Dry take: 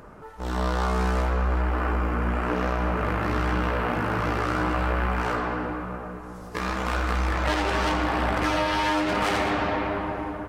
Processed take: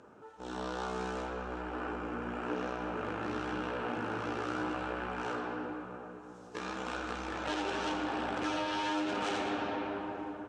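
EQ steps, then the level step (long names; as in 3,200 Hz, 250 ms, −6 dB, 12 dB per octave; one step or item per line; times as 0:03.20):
loudspeaker in its box 170–7,800 Hz, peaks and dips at 170 Hz −8 dB, 630 Hz −5 dB, 1,100 Hz −7 dB, 2,000 Hz −10 dB, 4,700 Hz −5 dB
−6.5 dB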